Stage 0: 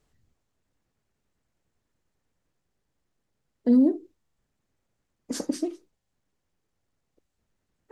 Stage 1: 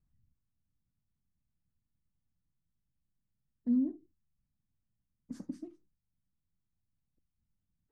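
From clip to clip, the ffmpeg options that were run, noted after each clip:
ffmpeg -i in.wav -af "firequalizer=gain_entry='entry(180,0);entry(420,-22);entry(1100,-15);entry(3100,-23)':delay=0.05:min_phase=1,volume=-3.5dB" out.wav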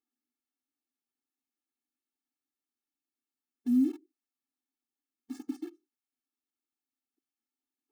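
ffmpeg -i in.wav -filter_complex "[0:a]asplit=2[link_01][link_02];[link_02]acrusher=bits=7:mix=0:aa=0.000001,volume=-4dB[link_03];[link_01][link_03]amix=inputs=2:normalize=0,afftfilt=real='re*eq(mod(floor(b*sr/1024/230),2),1)':imag='im*eq(mod(floor(b*sr/1024/230),2),1)':win_size=1024:overlap=0.75,volume=1.5dB" out.wav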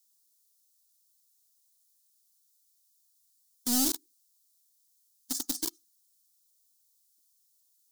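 ffmpeg -i in.wav -filter_complex "[0:a]aeval=exprs='(tanh(25.1*val(0)+0.3)-tanh(0.3))/25.1':channel_layout=same,acrossover=split=240|580[link_01][link_02][link_03];[link_02]acrusher=bits=6:mix=0:aa=0.000001[link_04];[link_01][link_04][link_03]amix=inputs=3:normalize=0,aexciter=amount=14.1:drive=4.6:freq=3700" out.wav

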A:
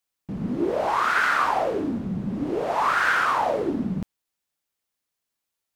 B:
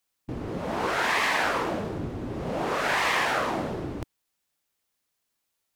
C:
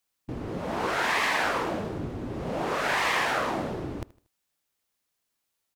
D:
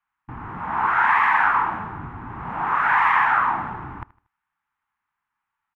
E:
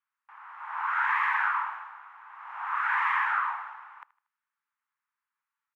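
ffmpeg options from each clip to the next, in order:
ffmpeg -i in.wav -af "afftfilt=real='re*lt(hypot(re,im),0.224)':imag='im*lt(hypot(re,im),0.224)':win_size=1024:overlap=0.75,volume=4dB" out.wav
ffmpeg -i in.wav -af "aecho=1:1:78|156|234:0.0944|0.0349|0.0129,volume=-1dB" out.wav
ffmpeg -i in.wav -af "firequalizer=gain_entry='entry(130,0);entry(560,-16);entry(860,12);entry(1400,11);entry(4400,-21)':delay=0.05:min_phase=1" out.wav
ffmpeg -i in.wav -af "highpass=frequency=1000:width=0.5412,highpass=frequency=1000:width=1.3066,volume=-7dB" out.wav

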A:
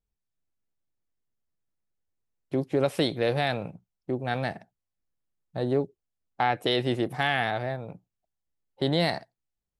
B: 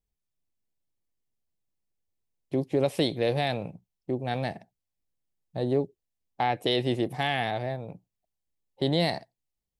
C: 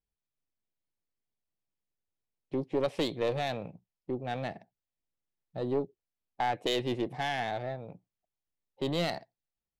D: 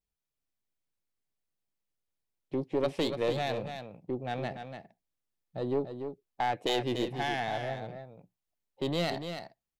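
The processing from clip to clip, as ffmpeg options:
ffmpeg -i in.wav -af "equalizer=frequency=1400:width_type=o:width=0.6:gain=-9.5" out.wav
ffmpeg -i in.wav -af "aeval=exprs='0.237*(cos(1*acos(clip(val(0)/0.237,-1,1)))-cos(1*PI/2))+0.075*(cos(2*acos(clip(val(0)/0.237,-1,1)))-cos(2*PI/2))':channel_layout=same,adynamicsmooth=sensitivity=5:basefreq=4900,lowshelf=frequency=160:gain=-5,volume=-3dB" out.wav
ffmpeg -i in.wav -af "aecho=1:1:290:0.398" out.wav

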